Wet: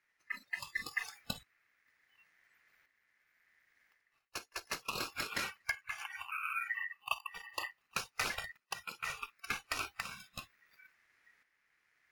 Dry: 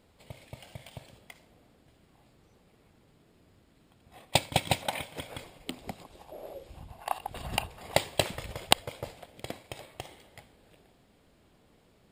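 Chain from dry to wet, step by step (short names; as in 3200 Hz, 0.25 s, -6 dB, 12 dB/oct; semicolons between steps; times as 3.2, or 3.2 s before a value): reverse; compressor 16:1, threshold -46 dBFS, peak gain reduction 32 dB; reverse; low shelf 170 Hz +3.5 dB; ring modulator 1900 Hz; spectral noise reduction 23 dB; tremolo saw up 0.7 Hz, depth 65%; gain +17.5 dB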